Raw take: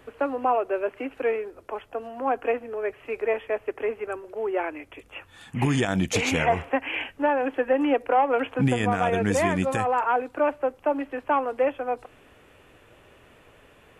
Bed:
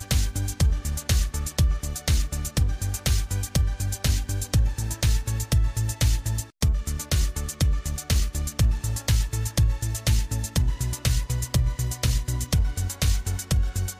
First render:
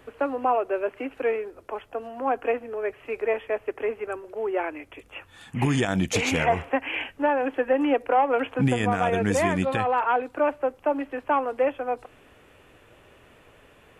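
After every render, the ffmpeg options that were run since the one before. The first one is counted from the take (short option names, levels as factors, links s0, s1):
-filter_complex "[0:a]asettb=1/sr,asplit=3[s0][s1][s2];[s0]atrim=end=6.044[s3];[s1]atrim=start=6.04:end=6.47,asetpts=PTS-STARTPTS,afade=t=in:d=0.004:c=qsin,afade=t=out:st=0.426:d=0.004:c=qsin,asoftclip=type=hard:threshold=0.188[s4];[s2]atrim=start=6.466[s5];[s3][s4]acrossfade=d=0.004:c1=hsin:c2=qsin[s6];[s6][s5]acrossfade=d=0.004:c1=qsin:c2=hsin,asettb=1/sr,asplit=3[s7][s8][s9];[s7]atrim=end=9.634[s10];[s8]atrim=start=9.63:end=10.23,asetpts=PTS-STARTPTS,afade=t=in:d=0.004:c=qsin,afade=t=out:st=0.596:d=0.004:c=qsin,highshelf=f=4900:t=q:w=3:g=-7.5[s11];[s9]atrim=start=10.226[s12];[s10][s11]acrossfade=d=0.004:c1=hsin:c2=qsin[s13];[s13][s12]acrossfade=d=0.004:c1=qsin:c2=hsin"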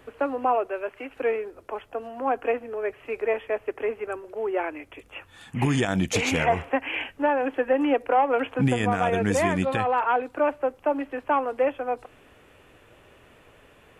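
-filter_complex "[0:a]asettb=1/sr,asplit=3[s0][s1][s2];[s0]atrim=end=0.674[s3];[s1]atrim=start=0.67:end=1.16,asetpts=PTS-STARTPTS,afade=t=in:d=0.004:c=qsin,afade=t=out:st=0.486:d=0.004:c=qsin,equalizer=f=250:t=o:w=2.6:g=-7[s4];[s2]atrim=start=1.156[s5];[s3][s4]acrossfade=d=0.004:c1=hsin:c2=qsin[s6];[s6][s5]acrossfade=d=0.004:c1=qsin:c2=hsin"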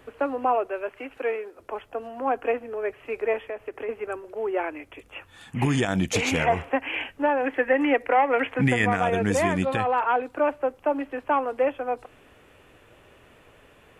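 -filter_complex "[0:a]asettb=1/sr,asplit=3[s0][s1][s2];[s0]atrim=end=1.184[s3];[s1]atrim=start=1.18:end=1.6,asetpts=PTS-STARTPTS,afade=t=in:d=0.004:c=qsin,afade=t=out:st=0.416:d=0.004:c=qsin,highpass=f=390:p=1[s4];[s2]atrim=start=1.596[s5];[s3][s4]acrossfade=d=0.004:c1=hsin:c2=qsin[s6];[s6][s5]acrossfade=d=0.004:c1=qsin:c2=hsin,asettb=1/sr,asplit=3[s7][s8][s9];[s7]atrim=end=3.474[s10];[s8]atrim=start=3.47:end=3.89,asetpts=PTS-STARTPTS,afade=t=in:d=0.004:c=qsin,afade=t=out:st=0.416:d=0.004:c=qsin,acompressor=threshold=0.0355:ratio=4:attack=3.2:release=140:knee=1:detection=peak[s11];[s9]atrim=start=3.886[s12];[s10][s11]acrossfade=d=0.004:c1=hsin:c2=qsin[s13];[s13][s12]acrossfade=d=0.004:c1=qsin:c2=hsin,asettb=1/sr,asplit=3[s14][s15][s16];[s14]atrim=end=7.444[s17];[s15]atrim=start=7.44:end=8.97,asetpts=PTS-STARTPTS,afade=t=in:d=0.004:c=qsin,afade=t=out:st=1.526:d=0.004:c=qsin,equalizer=f=2000:t=o:w=0.48:g=11.5[s18];[s16]atrim=start=8.966[s19];[s17][s18]acrossfade=d=0.004:c1=hsin:c2=qsin[s20];[s20][s19]acrossfade=d=0.004:c1=qsin:c2=hsin"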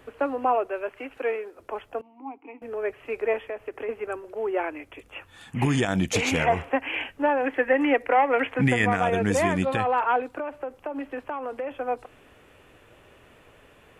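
-filter_complex "[0:a]asettb=1/sr,asplit=3[s0][s1][s2];[s0]atrim=end=2.014[s3];[s1]atrim=start=2.01:end=2.62,asetpts=PTS-STARTPTS,afade=t=in:d=0.004:c=qsin,afade=t=out:st=0.606:d=0.004:c=qsin,asplit=3[s4][s5][s6];[s4]bandpass=f=300:t=q:w=8,volume=1[s7];[s5]bandpass=f=870:t=q:w=8,volume=0.501[s8];[s6]bandpass=f=2240:t=q:w=8,volume=0.355[s9];[s7][s8][s9]amix=inputs=3:normalize=0[s10];[s2]atrim=start=2.616[s11];[s3][s10]acrossfade=d=0.004:c1=hsin:c2=qsin[s12];[s12][s11]acrossfade=d=0.004:c1=qsin:c2=hsin,asettb=1/sr,asplit=3[s13][s14][s15];[s13]atrim=end=10.374[s16];[s14]atrim=start=10.37:end=11.71,asetpts=PTS-STARTPTS,afade=t=in:d=0.004:c=qsin,afade=t=out:st=1.336:d=0.004:c=qsin,acompressor=threshold=0.0447:ratio=10:attack=3.2:release=140:knee=1:detection=peak[s17];[s15]atrim=start=11.706[s18];[s16][s17]acrossfade=d=0.004:c1=hsin:c2=qsin[s19];[s19][s18]acrossfade=d=0.004:c1=qsin:c2=hsin"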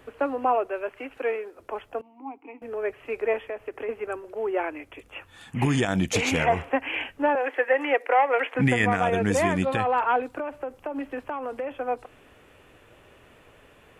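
-filter_complex "[0:a]asettb=1/sr,asplit=3[s0][s1][s2];[s0]atrim=end=7.354[s3];[s1]atrim=start=7.35:end=8.55,asetpts=PTS-STARTPTS,afade=t=in:d=0.004:c=qsin,afade=t=out:st=1.196:d=0.004:c=qsin,highpass=f=380:w=0.5412,highpass=f=380:w=1.3066[s4];[s2]atrim=start=8.546[s5];[s3][s4]acrossfade=d=0.004:c1=hsin:c2=qsin[s6];[s6][s5]acrossfade=d=0.004:c1=qsin:c2=hsin,asettb=1/sr,asplit=3[s7][s8][s9];[s7]atrim=end=9.954[s10];[s8]atrim=start=9.95:end=11.67,asetpts=PTS-STARTPTS,afade=t=in:d=0.004:c=qsin,afade=t=out:st=1.716:d=0.004:c=qsin,bass=f=250:g=3,treble=f=4000:g=3[s11];[s9]atrim=start=11.666[s12];[s10][s11]acrossfade=d=0.004:c1=hsin:c2=qsin[s13];[s13][s12]acrossfade=d=0.004:c1=qsin:c2=hsin"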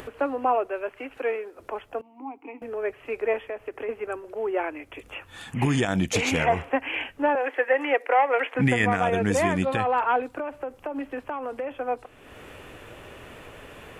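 -af "acompressor=mode=upward:threshold=0.0224:ratio=2.5"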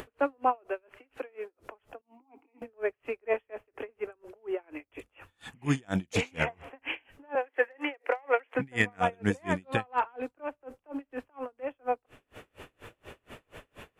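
-af "asoftclip=type=hard:threshold=0.251,aeval=exprs='val(0)*pow(10,-36*(0.5-0.5*cos(2*PI*4.2*n/s))/20)':c=same"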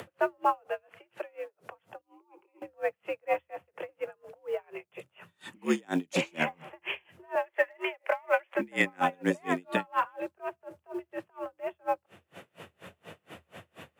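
-af "acrusher=bits=9:mode=log:mix=0:aa=0.000001,afreqshift=78"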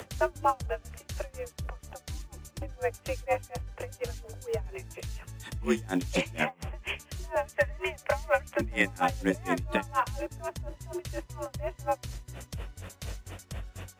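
-filter_complex "[1:a]volume=0.141[s0];[0:a][s0]amix=inputs=2:normalize=0"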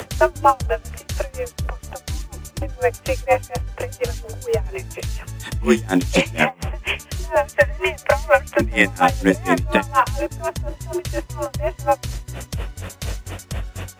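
-af "volume=3.76,alimiter=limit=0.891:level=0:latency=1"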